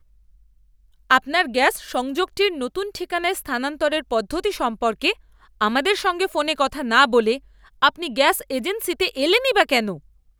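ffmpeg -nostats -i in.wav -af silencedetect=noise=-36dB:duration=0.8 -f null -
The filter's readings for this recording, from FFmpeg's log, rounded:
silence_start: 0.00
silence_end: 1.10 | silence_duration: 1.10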